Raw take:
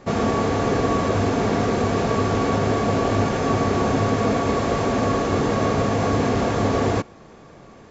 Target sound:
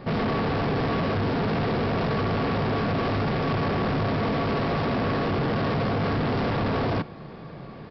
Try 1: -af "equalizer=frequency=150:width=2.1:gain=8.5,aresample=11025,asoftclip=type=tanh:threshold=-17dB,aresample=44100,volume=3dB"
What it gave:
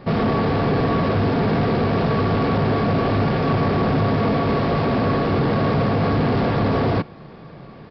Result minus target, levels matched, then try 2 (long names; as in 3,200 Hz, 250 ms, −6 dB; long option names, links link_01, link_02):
soft clipping: distortion −6 dB
-af "equalizer=frequency=150:width=2.1:gain=8.5,aresample=11025,asoftclip=type=tanh:threshold=-26dB,aresample=44100,volume=3dB"